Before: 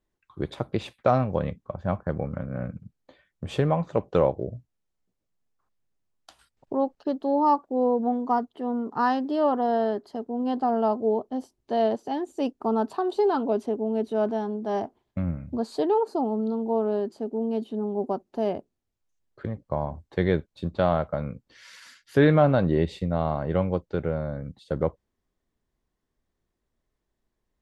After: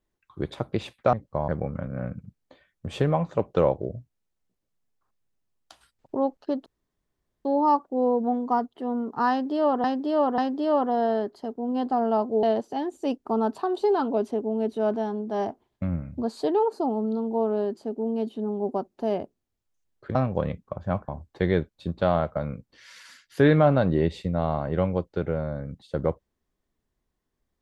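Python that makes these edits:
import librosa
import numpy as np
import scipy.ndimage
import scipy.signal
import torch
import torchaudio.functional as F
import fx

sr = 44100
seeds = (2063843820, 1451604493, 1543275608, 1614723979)

y = fx.edit(x, sr, fx.swap(start_s=1.13, length_s=0.93, other_s=19.5, other_length_s=0.35),
    fx.insert_room_tone(at_s=7.24, length_s=0.79),
    fx.repeat(start_s=9.09, length_s=0.54, count=3),
    fx.cut(start_s=11.14, length_s=0.64), tone=tone)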